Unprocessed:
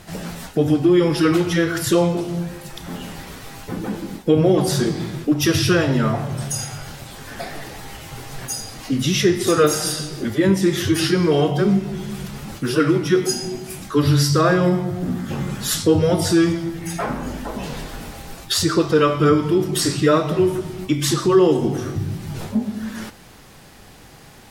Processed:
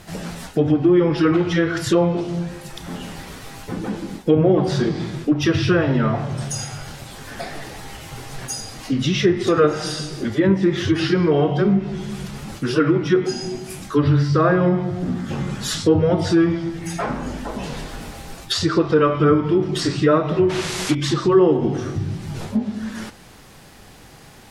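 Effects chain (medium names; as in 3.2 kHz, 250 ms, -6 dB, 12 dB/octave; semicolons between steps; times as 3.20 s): painted sound noise, 20.49–20.95 s, 300–12000 Hz -25 dBFS; low-pass that closes with the level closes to 2 kHz, closed at -12 dBFS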